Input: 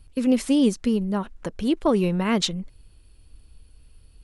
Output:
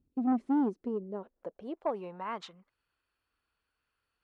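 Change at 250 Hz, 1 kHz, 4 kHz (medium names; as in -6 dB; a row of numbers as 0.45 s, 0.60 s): -11.0 dB, -5.0 dB, -23.5 dB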